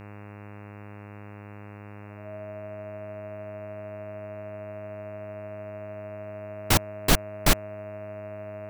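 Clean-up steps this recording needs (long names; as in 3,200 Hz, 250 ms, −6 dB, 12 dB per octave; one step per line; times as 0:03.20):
hum removal 102.8 Hz, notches 27
notch filter 630 Hz, Q 30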